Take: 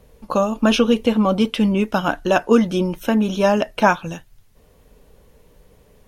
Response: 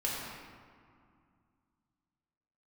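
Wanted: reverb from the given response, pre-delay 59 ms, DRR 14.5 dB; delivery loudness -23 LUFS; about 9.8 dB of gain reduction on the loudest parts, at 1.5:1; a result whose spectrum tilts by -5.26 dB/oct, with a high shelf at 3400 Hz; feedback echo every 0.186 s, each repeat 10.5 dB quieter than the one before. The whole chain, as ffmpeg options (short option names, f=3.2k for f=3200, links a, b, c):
-filter_complex "[0:a]highshelf=f=3.4k:g=-7,acompressor=threshold=-38dB:ratio=1.5,aecho=1:1:186|372|558:0.299|0.0896|0.0269,asplit=2[a][b];[1:a]atrim=start_sample=2205,adelay=59[c];[b][c]afir=irnorm=-1:irlink=0,volume=-20.5dB[d];[a][d]amix=inputs=2:normalize=0,volume=4dB"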